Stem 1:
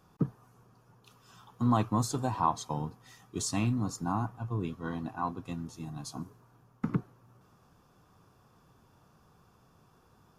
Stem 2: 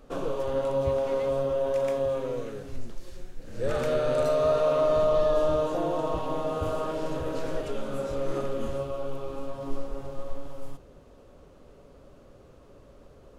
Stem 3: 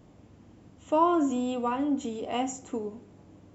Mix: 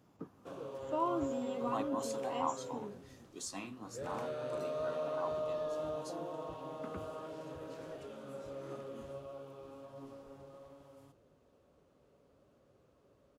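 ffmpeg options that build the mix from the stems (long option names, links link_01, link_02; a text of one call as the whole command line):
ffmpeg -i stem1.wav -i stem2.wav -i stem3.wav -filter_complex "[0:a]highpass=350,flanger=delay=9:depth=9.8:regen=-45:speed=1.7:shape=sinusoidal,volume=0dB[link_01];[1:a]adelay=350,volume=-9.5dB[link_02];[2:a]volume=-7dB[link_03];[link_01][link_02][link_03]amix=inputs=3:normalize=0,highpass=85,flanger=delay=6.9:depth=4.5:regen=90:speed=1.5:shape=triangular" out.wav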